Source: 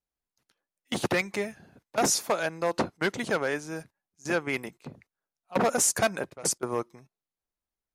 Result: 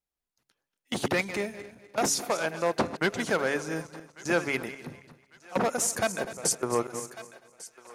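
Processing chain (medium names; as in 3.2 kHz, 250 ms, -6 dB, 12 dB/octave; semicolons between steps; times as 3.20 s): backward echo that repeats 125 ms, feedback 51%, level -12.5 dB; de-hum 139.3 Hz, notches 3; on a send: thinning echo 1148 ms, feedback 53%, high-pass 750 Hz, level -20.5 dB; on the sum: gain riding 0.5 s; 2.15–2.95 s: loudspeaker Doppler distortion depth 0.16 ms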